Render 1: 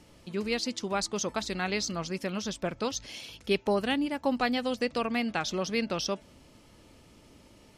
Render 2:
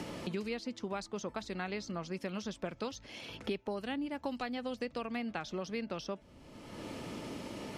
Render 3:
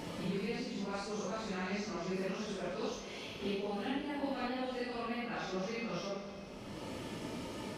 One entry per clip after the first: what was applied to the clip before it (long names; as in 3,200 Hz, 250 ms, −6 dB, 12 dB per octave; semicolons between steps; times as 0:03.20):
high-shelf EQ 3,600 Hz −9 dB; multiband upward and downward compressor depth 100%; level −8 dB
random phases in long frames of 200 ms; four-comb reverb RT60 3.9 s, combs from 31 ms, DRR 6.5 dB